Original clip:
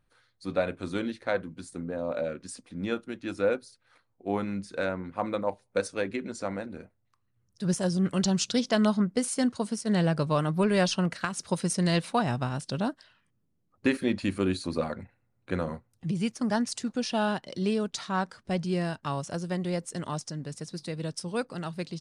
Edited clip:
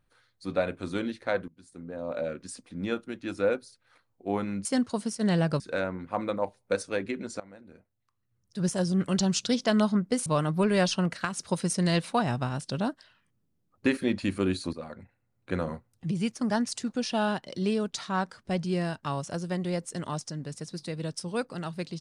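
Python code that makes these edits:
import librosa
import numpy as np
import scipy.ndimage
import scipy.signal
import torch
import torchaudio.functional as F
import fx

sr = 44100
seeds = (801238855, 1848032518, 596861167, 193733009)

y = fx.edit(x, sr, fx.fade_in_from(start_s=1.48, length_s=0.83, floor_db=-20.5),
    fx.fade_in_from(start_s=6.45, length_s=1.37, floor_db=-20.5),
    fx.move(start_s=9.31, length_s=0.95, to_s=4.65),
    fx.fade_in_from(start_s=14.73, length_s=0.8, floor_db=-13.0), tone=tone)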